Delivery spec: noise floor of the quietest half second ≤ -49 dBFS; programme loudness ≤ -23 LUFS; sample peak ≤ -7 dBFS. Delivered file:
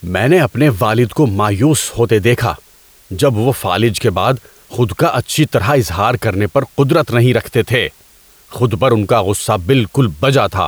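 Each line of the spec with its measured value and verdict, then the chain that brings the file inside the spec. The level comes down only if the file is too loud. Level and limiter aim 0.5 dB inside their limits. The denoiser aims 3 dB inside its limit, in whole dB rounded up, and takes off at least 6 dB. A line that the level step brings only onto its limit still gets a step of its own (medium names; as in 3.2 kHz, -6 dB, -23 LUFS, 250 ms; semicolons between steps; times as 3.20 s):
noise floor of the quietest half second -46 dBFS: fail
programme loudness -14.0 LUFS: fail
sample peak -2.0 dBFS: fail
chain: trim -9.5 dB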